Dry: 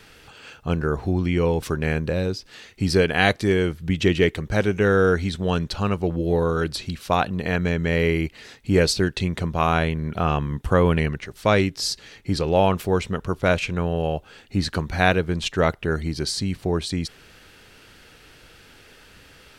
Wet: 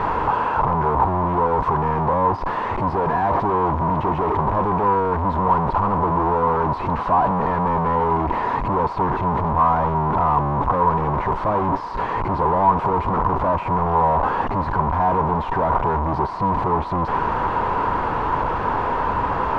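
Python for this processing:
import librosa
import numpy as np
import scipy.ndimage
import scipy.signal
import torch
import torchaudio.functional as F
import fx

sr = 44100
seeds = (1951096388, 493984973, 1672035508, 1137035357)

y = np.sign(x) * np.sqrt(np.mean(np.square(x)))
y = fx.lowpass_res(y, sr, hz=980.0, q=10.0)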